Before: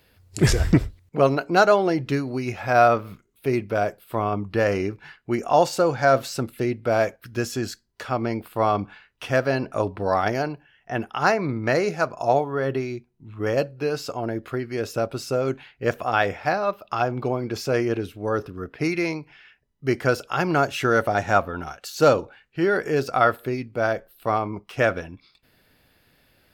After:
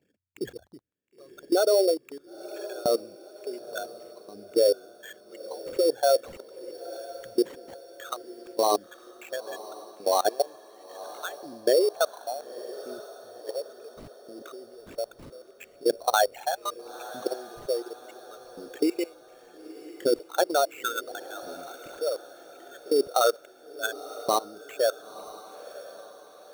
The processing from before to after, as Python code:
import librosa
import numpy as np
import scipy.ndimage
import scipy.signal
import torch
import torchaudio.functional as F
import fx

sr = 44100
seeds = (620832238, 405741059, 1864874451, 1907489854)

y = fx.envelope_sharpen(x, sr, power=3.0)
y = fx.level_steps(y, sr, step_db=23)
y = fx.filter_lfo_highpass(y, sr, shape='saw_up', hz=0.7, low_hz=220.0, high_hz=3500.0, q=1.7)
y = fx.sample_hold(y, sr, seeds[0], rate_hz=5000.0, jitter_pct=0)
y = fx.echo_diffused(y, sr, ms=970, feedback_pct=47, wet_db=-15.5)